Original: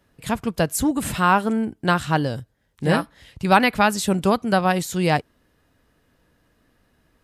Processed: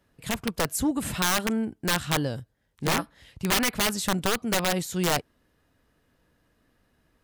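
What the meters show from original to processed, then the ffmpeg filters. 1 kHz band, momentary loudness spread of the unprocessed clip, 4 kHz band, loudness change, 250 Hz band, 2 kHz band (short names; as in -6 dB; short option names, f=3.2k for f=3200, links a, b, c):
-10.0 dB, 10 LU, +1.5 dB, -5.5 dB, -6.5 dB, -5.0 dB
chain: -af "aeval=exprs='(mod(3.76*val(0)+1,2)-1)/3.76':c=same,volume=-4.5dB"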